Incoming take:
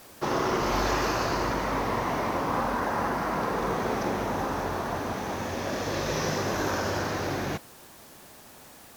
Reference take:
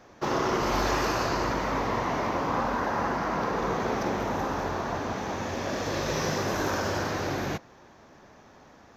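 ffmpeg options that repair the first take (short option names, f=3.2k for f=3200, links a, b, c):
-af "afwtdn=0.0025"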